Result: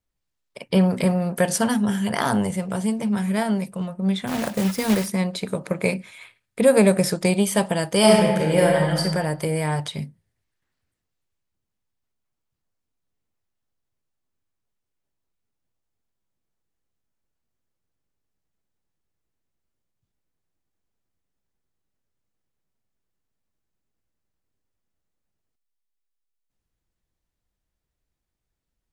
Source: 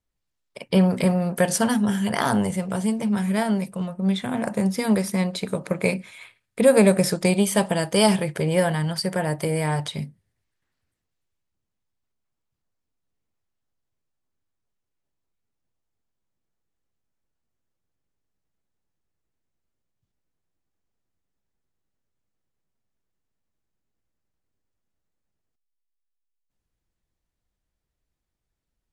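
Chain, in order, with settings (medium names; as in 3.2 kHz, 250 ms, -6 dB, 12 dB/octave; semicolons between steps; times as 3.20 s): 4.27–5.08 s: block-companded coder 3-bit; 7.98–9.00 s: reverb throw, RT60 1.2 s, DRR -1.5 dB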